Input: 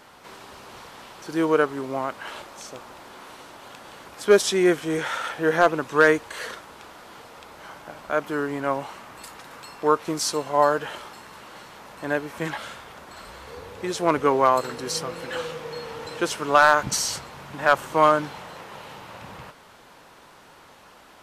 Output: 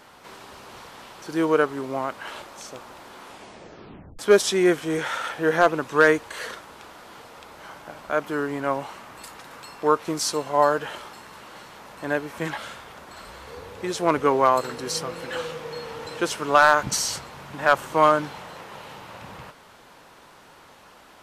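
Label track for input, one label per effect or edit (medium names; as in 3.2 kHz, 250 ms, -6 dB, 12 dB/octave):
3.220000	3.220000	tape stop 0.97 s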